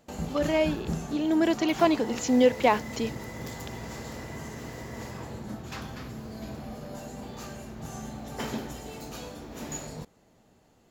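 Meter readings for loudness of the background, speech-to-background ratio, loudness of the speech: -38.0 LUFS, 12.0 dB, -26.0 LUFS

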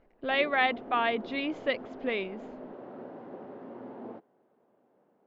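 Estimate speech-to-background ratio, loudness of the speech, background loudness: 15.0 dB, -29.5 LUFS, -44.5 LUFS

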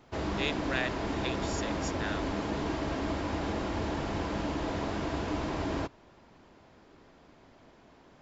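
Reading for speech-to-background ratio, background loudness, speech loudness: -4.0 dB, -33.5 LUFS, -37.5 LUFS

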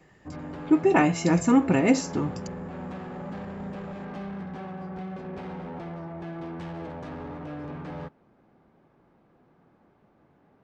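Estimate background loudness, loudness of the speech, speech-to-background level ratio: -37.5 LUFS, -22.5 LUFS, 15.0 dB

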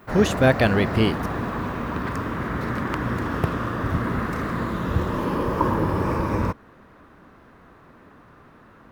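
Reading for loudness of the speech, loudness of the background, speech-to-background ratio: -21.0 LUFS, -26.0 LUFS, 5.0 dB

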